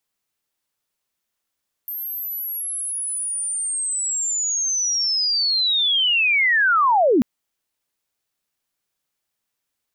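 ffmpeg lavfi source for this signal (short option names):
-f lavfi -i "aevalsrc='pow(10,(-26.5+14*t/5.34)/20)*sin(2*PI*(13000*t-12790*t*t/(2*5.34)))':d=5.34:s=44100"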